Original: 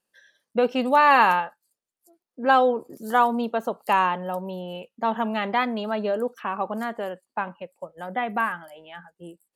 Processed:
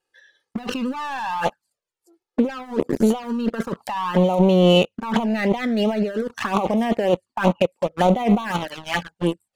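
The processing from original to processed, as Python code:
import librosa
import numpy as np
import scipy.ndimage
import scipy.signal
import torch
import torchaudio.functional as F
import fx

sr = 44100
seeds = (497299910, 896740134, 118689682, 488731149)

y = scipy.signal.sosfilt(scipy.signal.bessel(2, 6400.0, 'lowpass', norm='mag', fs=sr, output='sos'), x)
y = fx.hum_notches(y, sr, base_hz=50, count=2)
y = fx.leveller(y, sr, passes=3)
y = fx.over_compress(y, sr, threshold_db=-24.0, ratio=-1.0)
y = fx.env_flanger(y, sr, rest_ms=2.4, full_db=-18.5)
y = y * librosa.db_to_amplitude(4.5)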